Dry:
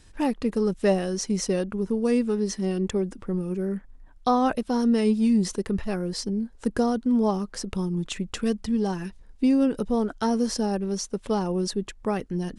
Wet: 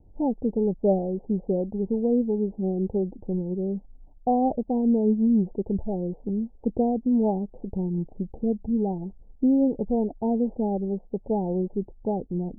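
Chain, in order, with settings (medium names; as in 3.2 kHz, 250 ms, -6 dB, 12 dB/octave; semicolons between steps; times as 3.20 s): steep low-pass 860 Hz 96 dB/octave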